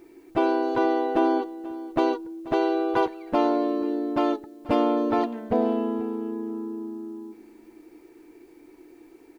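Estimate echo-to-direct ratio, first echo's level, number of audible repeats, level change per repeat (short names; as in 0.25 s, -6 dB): -18.5 dB, -18.5 dB, 2, -15.5 dB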